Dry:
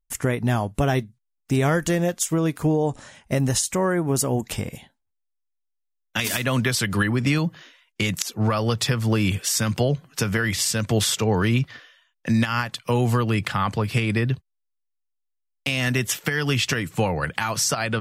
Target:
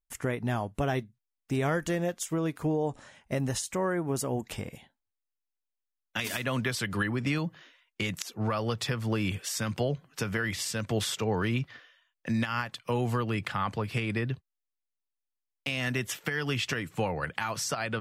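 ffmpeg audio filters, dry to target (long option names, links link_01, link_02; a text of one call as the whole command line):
ffmpeg -i in.wav -af "bass=frequency=250:gain=-3,treble=frequency=4000:gain=-5,volume=-6.5dB" out.wav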